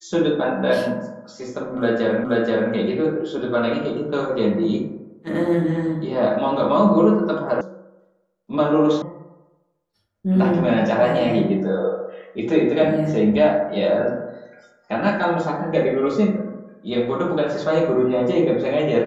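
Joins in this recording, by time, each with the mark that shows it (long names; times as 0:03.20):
0:02.24: the same again, the last 0.48 s
0:07.61: cut off before it has died away
0:09.02: cut off before it has died away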